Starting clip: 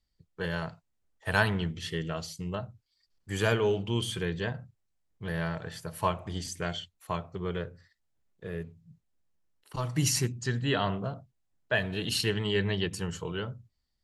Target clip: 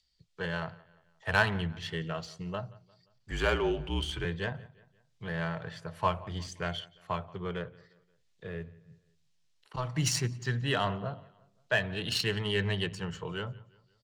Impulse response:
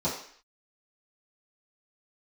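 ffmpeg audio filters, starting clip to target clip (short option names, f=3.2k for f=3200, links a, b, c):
-filter_complex "[0:a]equalizer=f=290:t=o:w=1.3:g=-6.5,acrossover=split=110|3300[a][b][c];[a]flanger=delay=16.5:depth=7.2:speed=0.38[d];[c]acompressor=mode=upward:threshold=-54dB:ratio=2.5[e];[d][b][e]amix=inputs=3:normalize=0,aecho=1:1:176|352|528:0.0794|0.0357|0.0161,adynamicsmooth=sensitivity=3.5:basefreq=4k,asettb=1/sr,asplit=3[f][g][h];[f]atrim=end=3.314[i];[g]atrim=start=3.31:end=4.25,asetpts=PTS-STARTPTS,afade=t=in:d=0.004:c=qsin,afade=t=out:st=0.936:d=0.004:c=qsin,afreqshift=-46[j];[h]atrim=start=4.246[k];[i][j]acrossfade=d=0.004:c1=hsin:c2=qsin[l];[l][k]acrossfade=d=0.004:c1=qsin:c2=hsin,volume=1dB"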